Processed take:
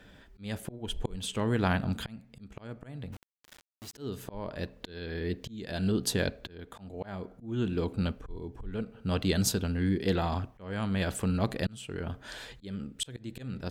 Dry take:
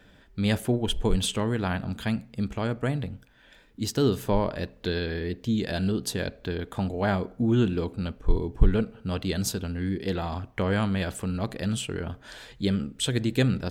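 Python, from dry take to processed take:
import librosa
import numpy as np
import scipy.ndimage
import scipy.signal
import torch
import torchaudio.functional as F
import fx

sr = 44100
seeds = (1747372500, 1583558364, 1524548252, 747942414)

y = fx.auto_swell(x, sr, attack_ms=572.0)
y = fx.cheby_harmonics(y, sr, harmonics=(3,), levels_db=(-32,), full_scale_db=-15.0)
y = fx.quant_dither(y, sr, seeds[0], bits=8, dither='none', at=(3.12, 3.93), fade=0.02)
y = F.gain(torch.from_numpy(y), 1.5).numpy()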